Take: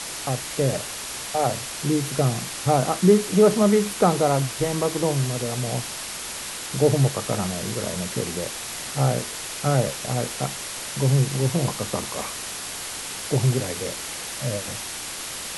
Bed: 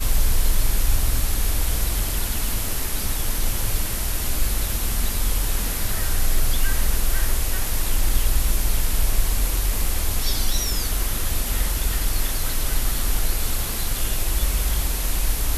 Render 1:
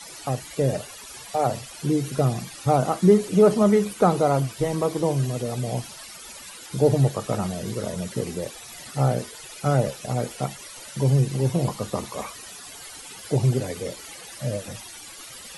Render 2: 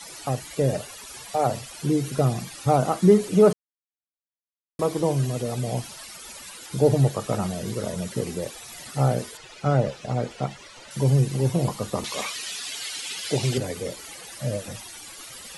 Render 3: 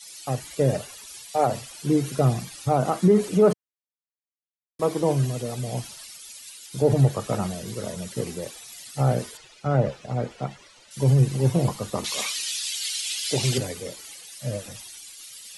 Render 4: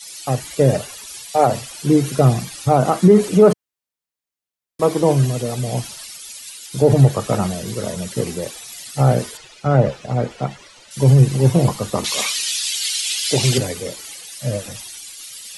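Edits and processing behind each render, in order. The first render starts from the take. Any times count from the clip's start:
noise reduction 15 dB, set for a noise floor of -33 dBFS
3.53–4.79 s: mute; 9.37–10.91 s: distance through air 100 m; 12.04–13.58 s: frequency weighting D
peak limiter -12.5 dBFS, peak gain reduction 7 dB; three bands expanded up and down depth 70%
trim +7 dB; peak limiter -2 dBFS, peak gain reduction 1.5 dB

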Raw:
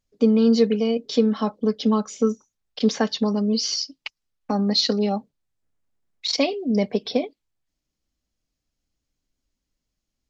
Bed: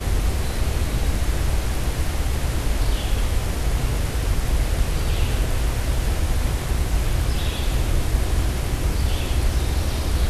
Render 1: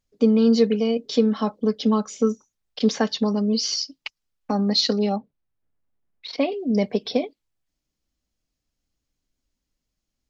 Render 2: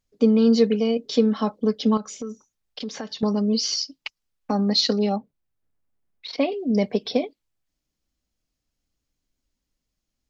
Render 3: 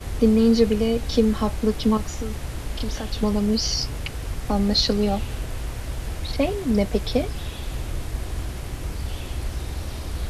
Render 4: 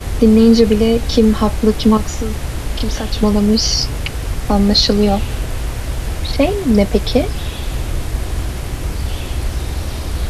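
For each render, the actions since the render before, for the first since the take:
5.16–6.52 s: distance through air 330 m
1.97–3.23 s: compression 4:1, threshold -30 dBFS
add bed -8 dB
trim +8.5 dB; peak limiter -1 dBFS, peak gain reduction 3 dB

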